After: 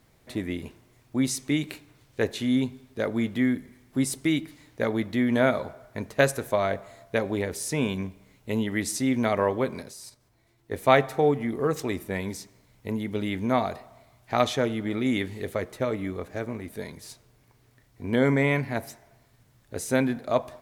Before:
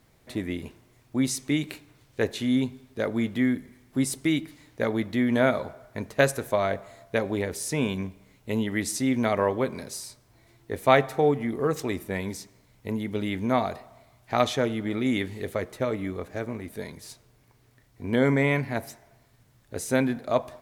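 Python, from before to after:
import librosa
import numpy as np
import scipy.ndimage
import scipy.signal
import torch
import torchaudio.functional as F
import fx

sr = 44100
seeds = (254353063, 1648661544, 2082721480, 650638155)

y = fx.level_steps(x, sr, step_db=11, at=(9.82, 10.72))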